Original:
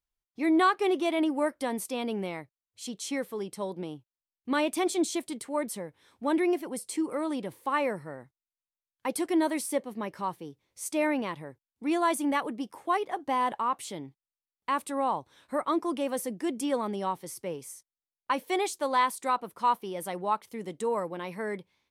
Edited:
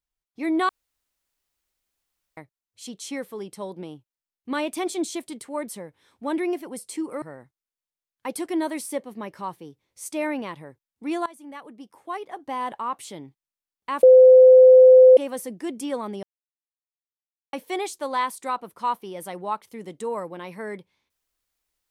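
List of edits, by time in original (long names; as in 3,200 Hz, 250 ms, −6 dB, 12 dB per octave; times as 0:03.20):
0:00.69–0:02.37: fill with room tone
0:07.22–0:08.02: remove
0:12.06–0:13.74: fade in, from −21 dB
0:14.83–0:15.97: beep over 513 Hz −7 dBFS
0:17.03–0:18.33: silence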